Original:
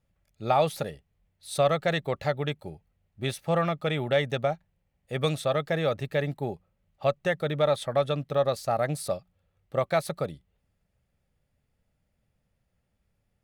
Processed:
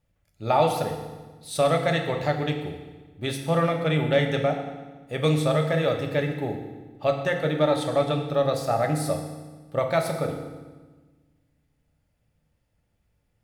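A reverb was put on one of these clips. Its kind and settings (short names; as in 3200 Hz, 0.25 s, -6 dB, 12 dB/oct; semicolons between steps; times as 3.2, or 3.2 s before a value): FDN reverb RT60 1.3 s, low-frequency decay 1.4×, high-frequency decay 0.9×, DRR 2.5 dB; gain +1 dB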